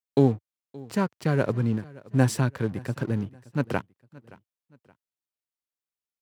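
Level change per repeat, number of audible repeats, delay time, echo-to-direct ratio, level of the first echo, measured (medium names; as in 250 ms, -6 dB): -9.0 dB, 2, 572 ms, -21.5 dB, -22.0 dB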